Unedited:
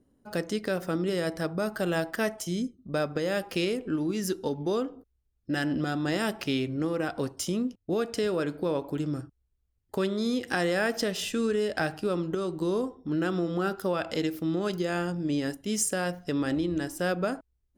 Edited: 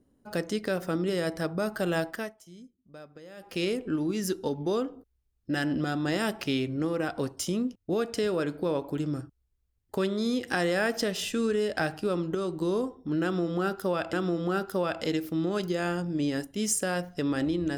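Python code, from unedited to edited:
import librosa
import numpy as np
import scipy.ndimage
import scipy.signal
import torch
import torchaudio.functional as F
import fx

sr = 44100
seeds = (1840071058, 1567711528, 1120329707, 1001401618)

y = fx.edit(x, sr, fx.fade_down_up(start_s=2.04, length_s=1.63, db=-18.5, fade_s=0.3),
    fx.repeat(start_s=13.23, length_s=0.9, count=2), tone=tone)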